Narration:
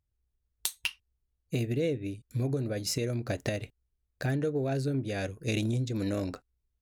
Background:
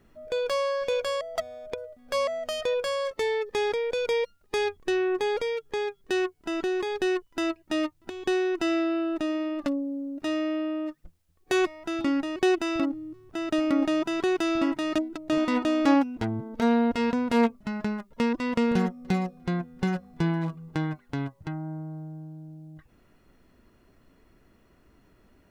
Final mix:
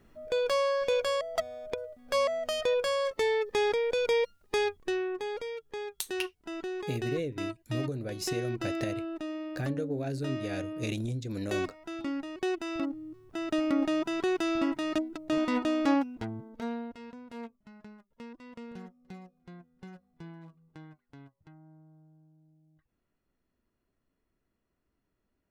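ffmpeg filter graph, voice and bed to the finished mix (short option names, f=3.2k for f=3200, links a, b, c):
-filter_complex "[0:a]adelay=5350,volume=-4dB[a];[1:a]volume=4.5dB,afade=t=out:st=4.5:d=0.63:silence=0.398107,afade=t=in:st=12.57:d=0.61:silence=0.562341,afade=t=out:st=15.67:d=1.32:silence=0.141254[b];[a][b]amix=inputs=2:normalize=0"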